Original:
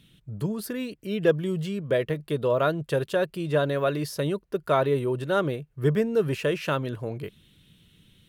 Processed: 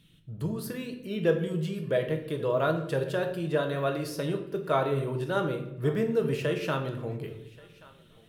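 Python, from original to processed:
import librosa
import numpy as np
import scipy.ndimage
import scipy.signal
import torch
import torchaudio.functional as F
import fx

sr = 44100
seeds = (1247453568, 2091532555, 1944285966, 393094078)

p1 = x + fx.echo_thinned(x, sr, ms=1131, feedback_pct=34, hz=540.0, wet_db=-21.0, dry=0)
p2 = fx.room_shoebox(p1, sr, seeds[0], volume_m3=200.0, walls='mixed', distance_m=0.61)
y = F.gain(torch.from_numpy(p2), -4.5).numpy()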